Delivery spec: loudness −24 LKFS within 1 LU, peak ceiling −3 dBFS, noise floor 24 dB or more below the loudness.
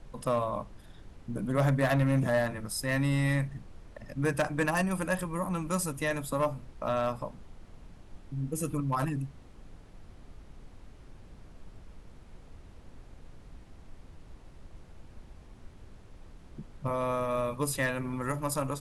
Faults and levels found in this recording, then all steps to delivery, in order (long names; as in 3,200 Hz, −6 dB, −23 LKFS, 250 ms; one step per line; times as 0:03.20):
share of clipped samples 0.3%; peaks flattened at −20.5 dBFS; background noise floor −53 dBFS; target noise floor −55 dBFS; integrated loudness −31.0 LKFS; sample peak −20.5 dBFS; target loudness −24.0 LKFS
→ clipped peaks rebuilt −20.5 dBFS
noise reduction from a noise print 6 dB
level +7 dB